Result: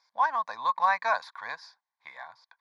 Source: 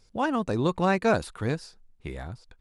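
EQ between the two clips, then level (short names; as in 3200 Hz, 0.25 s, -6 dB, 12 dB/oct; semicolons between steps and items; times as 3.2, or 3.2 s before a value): resonant high-pass 1100 Hz, resonance Q 6.1; air absorption 65 m; fixed phaser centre 1900 Hz, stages 8; 0.0 dB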